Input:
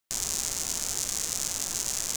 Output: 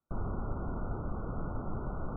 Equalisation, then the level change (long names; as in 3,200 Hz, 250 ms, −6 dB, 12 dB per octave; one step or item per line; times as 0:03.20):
linear-phase brick-wall low-pass 1,500 Hz
low-shelf EQ 300 Hz +12 dB
0.0 dB